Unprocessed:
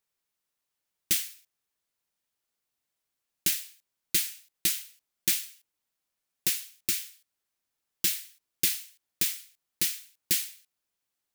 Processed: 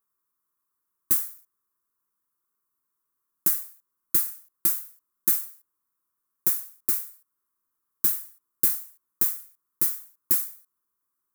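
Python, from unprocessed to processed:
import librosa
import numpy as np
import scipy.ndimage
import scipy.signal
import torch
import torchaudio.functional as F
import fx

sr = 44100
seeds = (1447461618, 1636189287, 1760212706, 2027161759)

y = fx.curve_eq(x, sr, hz=(130.0, 380.0, 730.0, 1100.0, 2800.0, 13000.0), db=(0, 5, -13, 14, -19, 8))
y = y * librosa.db_to_amplitude(-1.5)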